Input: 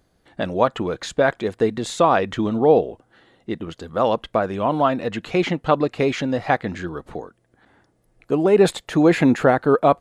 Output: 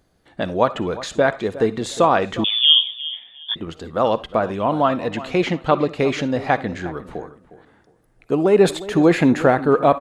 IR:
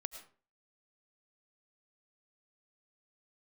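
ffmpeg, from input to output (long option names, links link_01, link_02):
-filter_complex "[0:a]asplit=2[link_01][link_02];[link_02]adelay=359,lowpass=frequency=2100:poles=1,volume=-15.5dB,asplit=2[link_03][link_04];[link_04]adelay=359,lowpass=frequency=2100:poles=1,volume=0.25,asplit=2[link_05][link_06];[link_06]adelay=359,lowpass=frequency=2100:poles=1,volume=0.25[link_07];[link_01][link_03][link_05][link_07]amix=inputs=4:normalize=0,asplit=2[link_08][link_09];[1:a]atrim=start_sample=2205,asetrate=83790,aresample=44100[link_10];[link_09][link_10]afir=irnorm=-1:irlink=0,volume=5.5dB[link_11];[link_08][link_11]amix=inputs=2:normalize=0,asettb=1/sr,asplit=3[link_12][link_13][link_14];[link_12]atrim=end=2.444[link_15];[link_13]atrim=start=2.44:end=3.56,asetpts=PTS-STARTPTS,afade=type=in:duration=0.004:curve=qsin,afade=type=out:start_time=1.116:duration=0.004:curve=qsin,lowpass=frequency=3100:width_type=q:width=0.5098,lowpass=frequency=3100:width_type=q:width=0.6013,lowpass=frequency=3100:width_type=q:width=0.9,lowpass=frequency=3100:width_type=q:width=2.563,afreqshift=-3700[link_16];[link_14]atrim=start=3.556[link_17];[link_15][link_16]acrossfade=duration=0.004:curve1=hsin:curve2=qsin[link_18];[link_18][link_17]acrossfade=duration=0.004:curve1=qsin:curve2=hsin,volume=-4dB"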